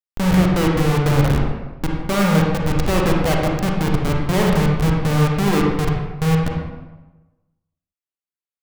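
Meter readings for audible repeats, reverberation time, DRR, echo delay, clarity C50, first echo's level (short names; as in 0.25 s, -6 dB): none, 1.1 s, -1.0 dB, none, 0.5 dB, none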